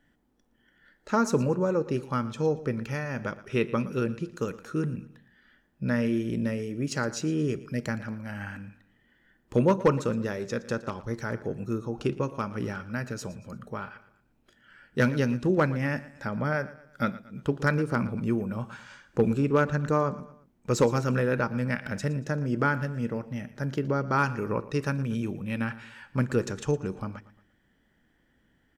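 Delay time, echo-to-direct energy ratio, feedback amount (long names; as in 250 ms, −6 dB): 116 ms, −16.5 dB, 42%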